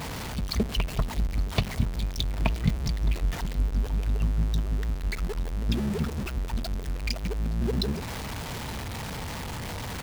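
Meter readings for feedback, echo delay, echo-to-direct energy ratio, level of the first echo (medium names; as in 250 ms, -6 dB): 21%, 871 ms, -19.5 dB, -19.5 dB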